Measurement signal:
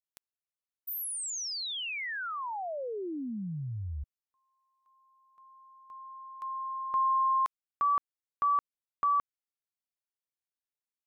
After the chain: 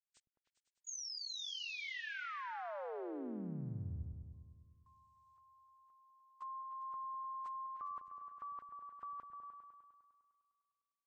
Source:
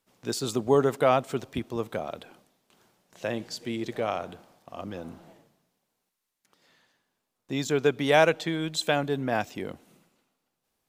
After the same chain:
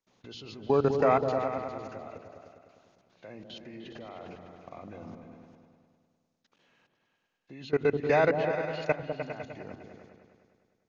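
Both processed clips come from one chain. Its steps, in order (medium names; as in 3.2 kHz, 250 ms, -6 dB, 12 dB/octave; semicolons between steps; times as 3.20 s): knee-point frequency compression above 1.4 kHz 1.5:1; level held to a coarse grid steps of 23 dB; delay with an opening low-pass 101 ms, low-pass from 200 Hz, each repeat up 2 oct, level -3 dB; trim +1 dB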